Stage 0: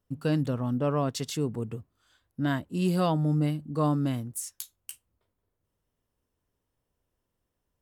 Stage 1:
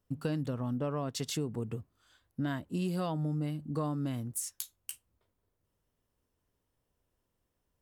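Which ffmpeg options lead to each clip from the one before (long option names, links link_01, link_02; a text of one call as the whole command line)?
ffmpeg -i in.wav -af "acompressor=threshold=-30dB:ratio=6" out.wav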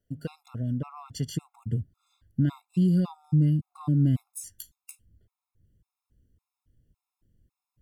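ffmpeg -i in.wav -af "asubboost=boost=9.5:cutoff=230,afftfilt=real='re*gt(sin(2*PI*1.8*pts/sr)*(1-2*mod(floor(b*sr/1024/690),2)),0)':imag='im*gt(sin(2*PI*1.8*pts/sr)*(1-2*mod(floor(b*sr/1024/690),2)),0)':win_size=1024:overlap=0.75" out.wav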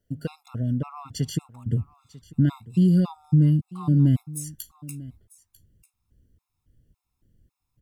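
ffmpeg -i in.wav -af "aecho=1:1:945:0.106,volume=4dB" out.wav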